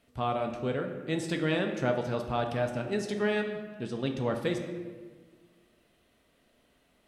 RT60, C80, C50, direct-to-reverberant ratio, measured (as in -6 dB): 1.5 s, 8.5 dB, 7.0 dB, 3.5 dB